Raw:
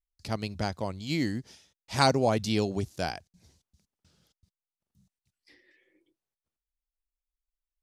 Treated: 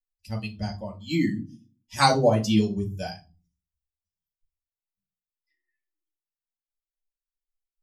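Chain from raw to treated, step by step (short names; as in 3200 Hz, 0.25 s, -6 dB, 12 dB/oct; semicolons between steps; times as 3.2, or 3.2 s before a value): per-bin expansion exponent 2; reverb RT60 0.30 s, pre-delay 3 ms, DRR -2 dB; gain +2.5 dB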